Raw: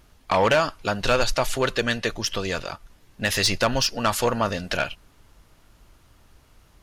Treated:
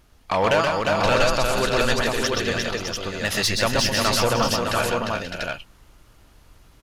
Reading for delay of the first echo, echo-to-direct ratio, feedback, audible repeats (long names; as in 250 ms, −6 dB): 126 ms, 2.0 dB, repeats not evenly spaced, 5